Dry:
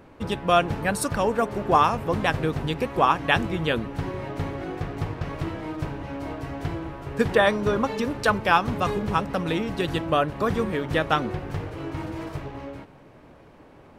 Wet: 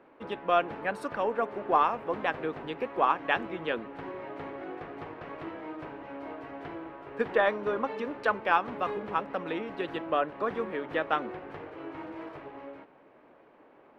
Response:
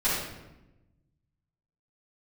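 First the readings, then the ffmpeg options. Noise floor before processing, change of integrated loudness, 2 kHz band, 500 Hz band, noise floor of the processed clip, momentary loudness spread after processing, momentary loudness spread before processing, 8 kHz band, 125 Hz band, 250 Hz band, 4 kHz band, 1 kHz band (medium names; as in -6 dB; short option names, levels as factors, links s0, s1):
-50 dBFS, -6.5 dB, -6.0 dB, -5.5 dB, -58 dBFS, 16 LU, 13 LU, under -20 dB, -20.0 dB, -10.0 dB, -11.0 dB, -5.0 dB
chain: -filter_complex "[0:a]acrossover=split=250 3100:gain=0.0891 1 0.0794[s0][s1][s2];[s0][s1][s2]amix=inputs=3:normalize=0,aeval=exprs='0.562*(cos(1*acos(clip(val(0)/0.562,-1,1)))-cos(1*PI/2))+0.00355*(cos(6*acos(clip(val(0)/0.562,-1,1)))-cos(6*PI/2))':c=same,volume=0.562"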